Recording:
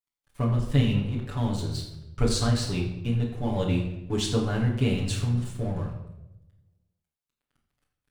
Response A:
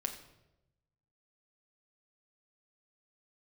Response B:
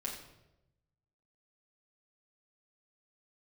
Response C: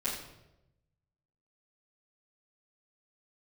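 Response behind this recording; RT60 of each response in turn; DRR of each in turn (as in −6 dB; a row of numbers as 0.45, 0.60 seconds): B; 0.95, 0.95, 0.95 seconds; 3.0, −4.5, −13.5 decibels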